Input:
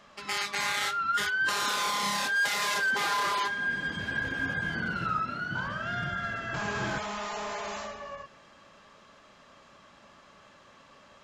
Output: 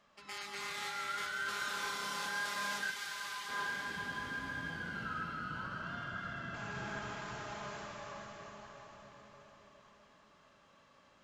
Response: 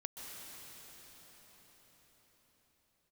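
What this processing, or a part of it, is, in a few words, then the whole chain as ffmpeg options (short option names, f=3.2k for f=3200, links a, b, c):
cathedral: -filter_complex "[1:a]atrim=start_sample=2205[a];[0:a][a]afir=irnorm=-1:irlink=0,asplit=3[b][c][d];[b]afade=t=out:st=2.9:d=0.02[e];[c]equalizer=f=380:w=0.35:g=-13,afade=t=in:st=2.9:d=0.02,afade=t=out:st=3.48:d=0.02[f];[d]afade=t=in:st=3.48:d=0.02[g];[e][f][g]amix=inputs=3:normalize=0,volume=-8.5dB"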